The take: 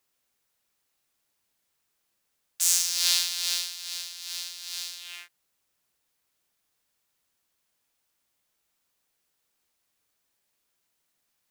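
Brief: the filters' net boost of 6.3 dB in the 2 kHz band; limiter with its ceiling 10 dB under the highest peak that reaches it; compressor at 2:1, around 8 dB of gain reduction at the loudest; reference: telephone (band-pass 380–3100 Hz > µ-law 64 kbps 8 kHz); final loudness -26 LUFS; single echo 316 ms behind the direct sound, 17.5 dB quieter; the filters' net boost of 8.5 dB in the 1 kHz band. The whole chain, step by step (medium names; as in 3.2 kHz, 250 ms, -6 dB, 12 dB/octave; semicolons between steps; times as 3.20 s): peaking EQ 1 kHz +8.5 dB; peaking EQ 2 kHz +7.5 dB; compression 2:1, threshold -29 dBFS; peak limiter -18 dBFS; band-pass 380–3100 Hz; delay 316 ms -17.5 dB; trim +16 dB; µ-law 64 kbps 8 kHz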